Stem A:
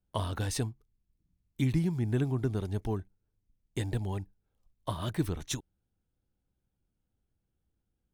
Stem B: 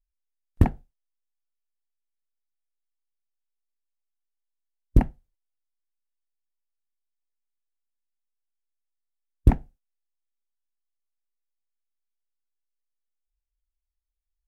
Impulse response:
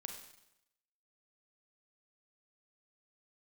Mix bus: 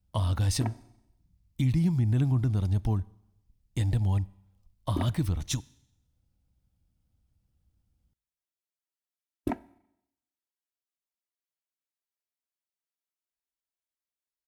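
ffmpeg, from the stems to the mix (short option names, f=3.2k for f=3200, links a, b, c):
-filter_complex "[0:a]equalizer=f=400:t=o:w=0.33:g=-11,equalizer=f=1.6k:t=o:w=0.33:g=-5,equalizer=f=5k:t=o:w=0.33:g=4,equalizer=f=71:t=o:w=2.2:g=9,volume=1.5dB,asplit=2[a][b];[b]volume=-14dB[c];[1:a]highpass=230,aecho=1:1:3.1:0.65,volume=-4.5dB,asplit=2[d][e];[e]volume=-12.5dB[f];[2:a]atrim=start_sample=2205[g];[c][f]amix=inputs=2:normalize=0[h];[h][g]afir=irnorm=-1:irlink=0[i];[a][d][i]amix=inputs=3:normalize=0,alimiter=limit=-17.5dB:level=0:latency=1:release=115"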